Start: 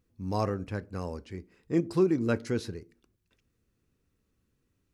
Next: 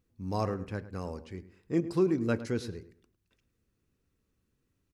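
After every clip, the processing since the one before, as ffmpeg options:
ffmpeg -i in.wav -filter_complex "[0:a]asplit=2[link_01][link_02];[link_02]adelay=104,lowpass=frequency=2600:poles=1,volume=-14.5dB,asplit=2[link_03][link_04];[link_04]adelay=104,lowpass=frequency=2600:poles=1,volume=0.27,asplit=2[link_05][link_06];[link_06]adelay=104,lowpass=frequency=2600:poles=1,volume=0.27[link_07];[link_01][link_03][link_05][link_07]amix=inputs=4:normalize=0,volume=-2dB" out.wav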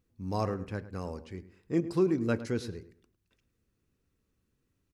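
ffmpeg -i in.wav -af anull out.wav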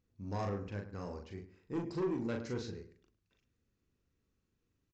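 ffmpeg -i in.wav -filter_complex "[0:a]aresample=16000,asoftclip=type=tanh:threshold=-27dB,aresample=44100,asplit=2[link_01][link_02];[link_02]adelay=40,volume=-4dB[link_03];[link_01][link_03]amix=inputs=2:normalize=0,volume=-5dB" out.wav

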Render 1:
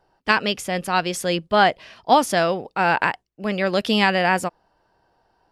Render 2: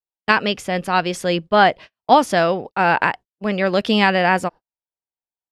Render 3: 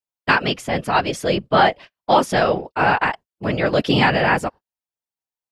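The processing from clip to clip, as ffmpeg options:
ffmpeg -i in.wav -af "agate=range=-44dB:threshold=-35dB:ratio=16:detection=peak,lowpass=frequency=3900:poles=1,volume=3dB" out.wav
ffmpeg -i in.wav -af "afftfilt=real='hypot(re,im)*cos(2*PI*random(0))':imag='hypot(re,im)*sin(2*PI*random(1))':win_size=512:overlap=0.75,apsyclip=11.5dB,volume=-6dB" out.wav

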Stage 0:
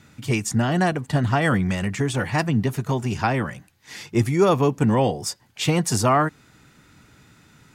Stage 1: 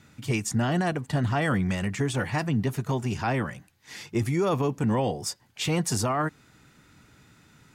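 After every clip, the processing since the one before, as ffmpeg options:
ffmpeg -i in.wav -af "alimiter=limit=-13.5dB:level=0:latency=1:release=15,volume=-3.5dB" out.wav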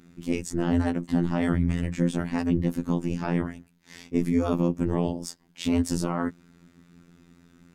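ffmpeg -i in.wav -af "aeval=exprs='val(0)*sin(2*PI*99*n/s)':channel_layout=same,equalizer=frequency=180:width_type=o:width=1.8:gain=14,afftfilt=real='hypot(re,im)*cos(PI*b)':imag='0':win_size=2048:overlap=0.75" out.wav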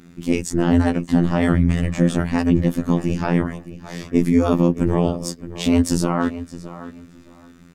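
ffmpeg -i in.wav -filter_complex "[0:a]asplit=2[link_01][link_02];[link_02]adelay=617,lowpass=frequency=3600:poles=1,volume=-14dB,asplit=2[link_03][link_04];[link_04]adelay=617,lowpass=frequency=3600:poles=1,volume=0.21[link_05];[link_01][link_03][link_05]amix=inputs=3:normalize=0,volume=7.5dB" out.wav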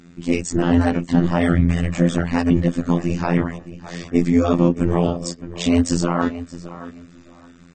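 ffmpeg -i in.wav -ar 32000 -c:a aac -b:a 24k out.aac

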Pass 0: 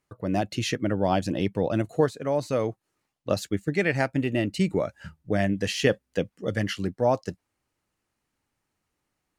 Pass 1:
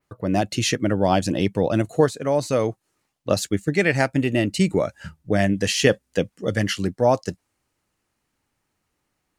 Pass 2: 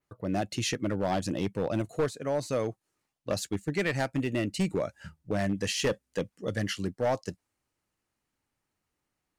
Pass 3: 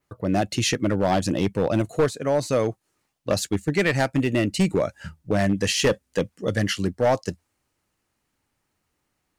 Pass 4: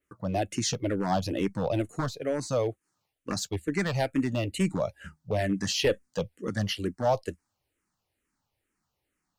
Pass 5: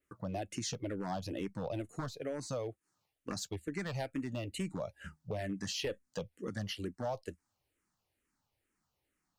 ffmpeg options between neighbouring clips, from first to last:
ffmpeg -i in.wav -af "adynamicequalizer=threshold=0.00355:dfrequency=8100:dqfactor=0.71:tfrequency=8100:tqfactor=0.71:attack=5:release=100:ratio=0.375:range=3:mode=boostabove:tftype=bell,volume=4.5dB" out.wav
ffmpeg -i in.wav -af "volume=13.5dB,asoftclip=hard,volume=-13.5dB,volume=-8dB" out.wav
ffmpeg -i in.wav -af "equalizer=frequency=82:width_type=o:width=0.23:gain=2.5,volume=7.5dB" out.wav
ffmpeg -i in.wav -filter_complex "[0:a]asplit=2[link_01][link_02];[link_02]afreqshift=-2.2[link_03];[link_01][link_03]amix=inputs=2:normalize=1,volume=-3dB" out.wav
ffmpeg -i in.wav -af "acompressor=threshold=-36dB:ratio=2.5,volume=-2.5dB" out.wav

